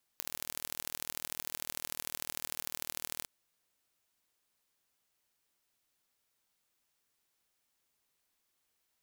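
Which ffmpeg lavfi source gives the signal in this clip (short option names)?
-f lavfi -i "aevalsrc='0.398*eq(mod(n,1102),0)*(0.5+0.5*eq(mod(n,3306),0))':d=3.06:s=44100"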